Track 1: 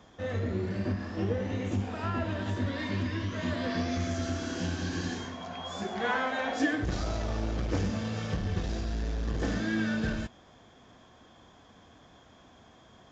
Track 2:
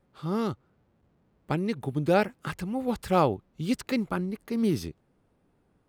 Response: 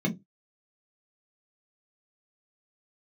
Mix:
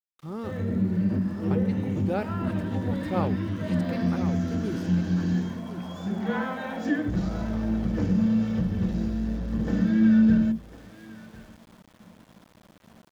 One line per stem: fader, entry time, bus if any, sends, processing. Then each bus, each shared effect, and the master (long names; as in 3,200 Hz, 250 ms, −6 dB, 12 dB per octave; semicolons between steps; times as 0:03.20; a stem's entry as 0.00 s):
−1.0 dB, 0.25 s, send −13.5 dB, echo send −15 dB, no processing
−6.5 dB, 0.00 s, no send, echo send −9.5 dB, no processing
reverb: on, pre-delay 3 ms
echo: single-tap delay 1,051 ms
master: high-shelf EQ 2,600 Hz −7 dB; centre clipping without the shift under −50 dBFS